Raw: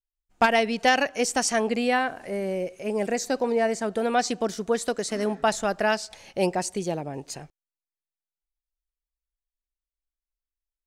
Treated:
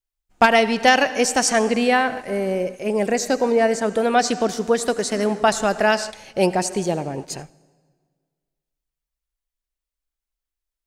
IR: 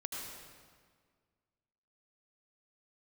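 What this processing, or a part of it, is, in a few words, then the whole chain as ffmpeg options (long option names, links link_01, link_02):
keyed gated reverb: -filter_complex "[0:a]asplit=3[link_01][link_02][link_03];[1:a]atrim=start_sample=2205[link_04];[link_02][link_04]afir=irnorm=-1:irlink=0[link_05];[link_03]apad=whole_len=478941[link_06];[link_05][link_06]sidechaingate=range=-11dB:threshold=-38dB:ratio=16:detection=peak,volume=-10.5dB[link_07];[link_01][link_07]amix=inputs=2:normalize=0,volume=4dB"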